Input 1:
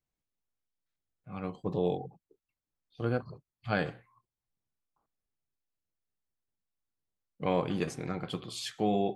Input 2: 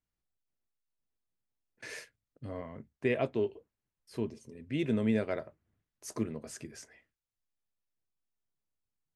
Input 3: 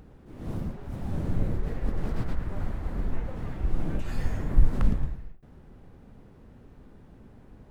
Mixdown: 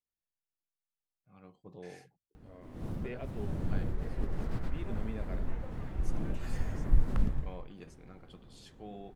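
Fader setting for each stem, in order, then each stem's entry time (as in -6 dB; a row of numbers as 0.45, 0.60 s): -18.0, -13.5, -5.5 dB; 0.00, 0.00, 2.35 s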